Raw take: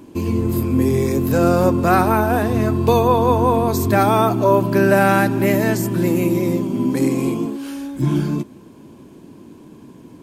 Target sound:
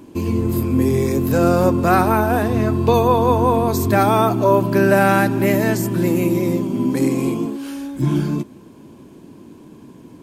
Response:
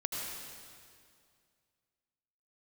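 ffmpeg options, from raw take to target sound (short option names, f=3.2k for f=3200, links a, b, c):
-filter_complex "[0:a]asettb=1/sr,asplit=3[a][b][c];[a]atrim=end=2.484[d];[b]atrim=start=2.48:end=2.94,asetpts=PTS-STARTPTS,afade=t=in:d=0.004:c=qsin,afade=t=out:st=0.456:d=0.004:c=qsin,acrossover=split=5700[e][f];[f]acompressor=threshold=-45dB:ratio=4:attack=1:release=60[g];[e][g]amix=inputs=2:normalize=0[h];[c]atrim=start=2.936[i];[d][h]acrossfade=d=0.004:c1=hsin:c2=qsin[j];[j][i]acrossfade=d=0.004:c1=qsin:c2=hsin"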